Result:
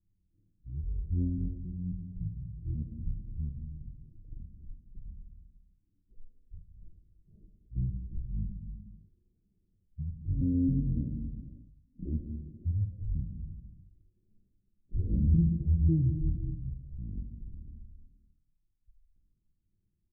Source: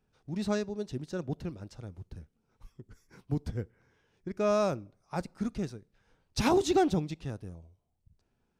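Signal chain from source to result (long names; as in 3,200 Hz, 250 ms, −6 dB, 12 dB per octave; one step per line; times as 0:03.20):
pitch shifter gated in a rhythm −11.5 semitones, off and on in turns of 117 ms
Bessel low-pass filter 510 Hz, order 8
reverb whose tail is shaped and stops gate 280 ms falling, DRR 3 dB
wrong playback speed 78 rpm record played at 33 rpm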